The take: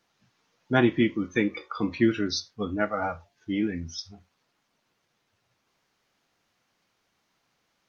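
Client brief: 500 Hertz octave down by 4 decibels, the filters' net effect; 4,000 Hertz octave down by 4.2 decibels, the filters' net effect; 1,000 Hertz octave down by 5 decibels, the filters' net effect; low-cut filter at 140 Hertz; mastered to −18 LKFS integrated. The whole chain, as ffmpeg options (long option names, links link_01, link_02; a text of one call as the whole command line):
ffmpeg -i in.wav -af "highpass=140,equalizer=frequency=500:width_type=o:gain=-5,equalizer=frequency=1000:width_type=o:gain=-5.5,equalizer=frequency=4000:width_type=o:gain=-5,volume=12dB" out.wav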